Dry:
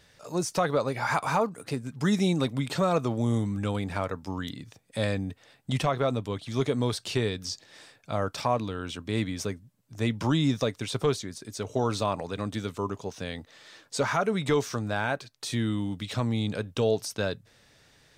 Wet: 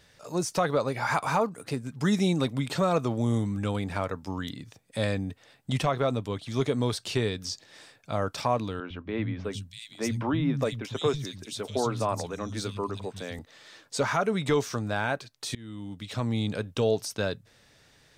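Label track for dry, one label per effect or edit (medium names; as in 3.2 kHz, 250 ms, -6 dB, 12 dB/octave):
8.800000	13.390000	three bands offset in time mids, lows, highs 100/640 ms, splits 180/2900 Hz
15.550000	16.370000	fade in, from -23.5 dB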